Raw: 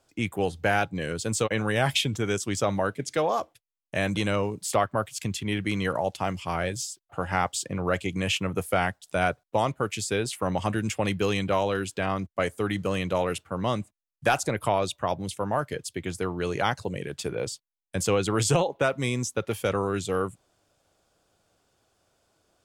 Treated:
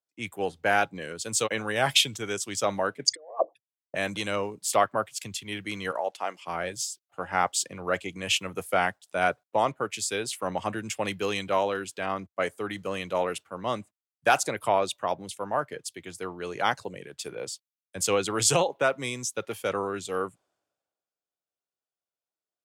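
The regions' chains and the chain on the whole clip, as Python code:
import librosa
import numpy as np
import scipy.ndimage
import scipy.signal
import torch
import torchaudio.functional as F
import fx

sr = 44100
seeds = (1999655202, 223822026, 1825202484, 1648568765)

y = fx.chain(x, sr, fx.envelope_sharpen(power=3.0),
    fx.over_compress(threshold_db=-29.0, ratio=-0.5),
    fx.band_widen(depth_pct=100), at=(3.07, 3.95))
y = fx.chain(y, sr, fx.highpass(hz=400.0, slope=12),
    fx.high_shelf(hz=11000.0, db=-4.5), at=(5.91, 6.47))
y = fx.highpass(y, sr, hz=370.0, slope=6)
y = fx.band_widen(y, sr, depth_pct=70)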